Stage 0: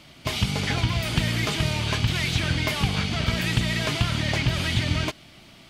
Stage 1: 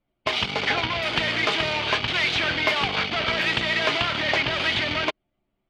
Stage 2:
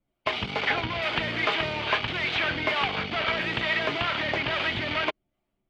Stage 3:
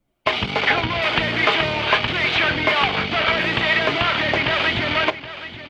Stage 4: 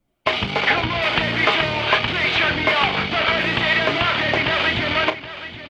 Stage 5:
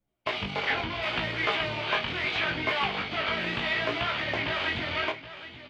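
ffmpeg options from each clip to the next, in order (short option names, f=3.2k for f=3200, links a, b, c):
-filter_complex "[0:a]anlmdn=63.1,acrossover=split=340 4700:gain=0.1 1 0.112[a][b][c];[a][b][c]amix=inputs=3:normalize=0,volume=6.5dB"
-filter_complex "[0:a]acrossover=split=470[a][b];[a]aeval=exprs='val(0)*(1-0.5/2+0.5/2*cos(2*PI*2.3*n/s))':c=same[c];[b]aeval=exprs='val(0)*(1-0.5/2-0.5/2*cos(2*PI*2.3*n/s))':c=same[d];[c][d]amix=inputs=2:normalize=0,acrossover=split=3400[e][f];[f]acompressor=threshold=-44dB:ratio=4:attack=1:release=60[g];[e][g]amix=inputs=2:normalize=0"
-af "aecho=1:1:772:0.211,volume=7.5dB"
-filter_complex "[0:a]asplit=2[a][b];[b]adelay=35,volume=-12dB[c];[a][c]amix=inputs=2:normalize=0"
-af "flanger=delay=15:depth=7.4:speed=0.72,volume=-7dB"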